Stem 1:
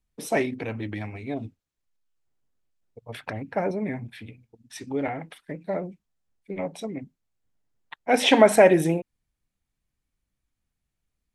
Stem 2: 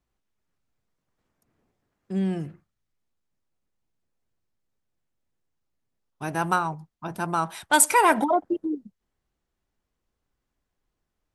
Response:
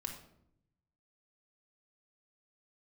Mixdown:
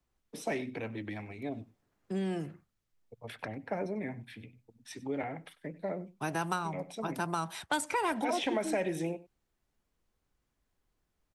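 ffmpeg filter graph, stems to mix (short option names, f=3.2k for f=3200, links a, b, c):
-filter_complex "[0:a]adelay=150,volume=-6dB,asplit=2[a][b];[b]volume=-20.5dB[c];[1:a]volume=-0.5dB[d];[c]aecho=0:1:96:1[e];[a][d][e]amix=inputs=3:normalize=0,acrossover=split=120|270|2800|7700[f][g][h][i][j];[f]acompressor=threshold=-55dB:ratio=4[k];[g]acompressor=threshold=-41dB:ratio=4[l];[h]acompressor=threshold=-32dB:ratio=4[m];[i]acompressor=threshold=-42dB:ratio=4[n];[j]acompressor=threshold=-55dB:ratio=4[o];[k][l][m][n][o]amix=inputs=5:normalize=0"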